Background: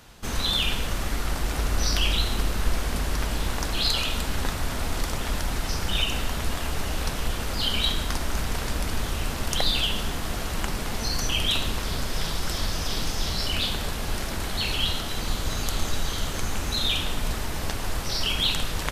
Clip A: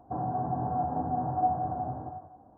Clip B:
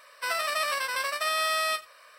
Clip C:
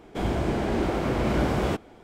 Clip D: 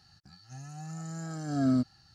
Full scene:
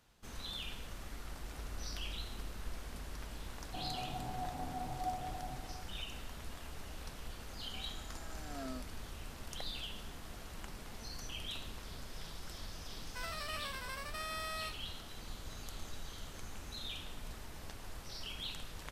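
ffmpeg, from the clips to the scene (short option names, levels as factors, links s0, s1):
-filter_complex "[0:a]volume=0.112[s0];[4:a]highpass=500[s1];[1:a]atrim=end=2.57,asetpts=PTS-STARTPTS,volume=0.237,afade=t=in:d=0.004:c=hsin,afade=t=out:st=2.566:d=0.004:c=hsin,adelay=3630[s2];[s1]atrim=end=2.14,asetpts=PTS-STARTPTS,volume=0.376,afade=t=in:d=0.004:c=hsin,afade=t=out:st=2.136:d=0.004:c=hsin,adelay=6990[s3];[2:a]atrim=end=2.18,asetpts=PTS-STARTPTS,volume=0.178,afade=t=in:d=0.004:c=hsin,afade=t=out:st=2.176:d=0.004:c=hsin,adelay=12930[s4];[s0][s2][s3][s4]amix=inputs=4:normalize=0"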